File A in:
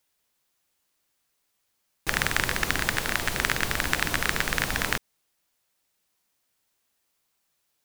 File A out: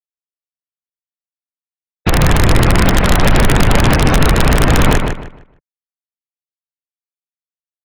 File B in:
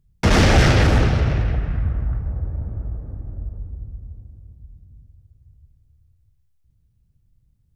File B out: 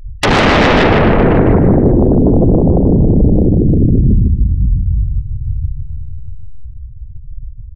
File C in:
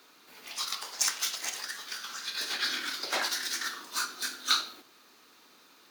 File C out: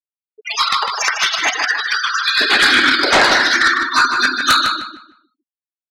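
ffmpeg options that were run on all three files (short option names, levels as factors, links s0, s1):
-filter_complex "[0:a]equalizer=f=150:t=o:w=0.39:g=3,acompressor=threshold=0.0562:ratio=8,lowshelf=f=110:g=10,acrossover=split=3100[s0][s1];[s1]acompressor=threshold=0.00708:ratio=4:attack=1:release=60[s2];[s0][s2]amix=inputs=2:normalize=0,afftfilt=real='re*gte(hypot(re,im),0.0141)':imag='im*gte(hypot(re,im),0.0141)':win_size=1024:overlap=0.75,aeval=exprs='0.299*sin(PI/2*7.94*val(0)/0.299)':c=same,asplit=2[s3][s4];[s4]adelay=153,lowpass=f=3900:p=1,volume=0.562,asplit=2[s5][s6];[s6]adelay=153,lowpass=f=3900:p=1,volume=0.27,asplit=2[s7][s8];[s8]adelay=153,lowpass=f=3900:p=1,volume=0.27,asplit=2[s9][s10];[s10]adelay=153,lowpass=f=3900:p=1,volume=0.27[s11];[s5][s7][s9][s11]amix=inputs=4:normalize=0[s12];[s3][s12]amix=inputs=2:normalize=0,volume=1.5"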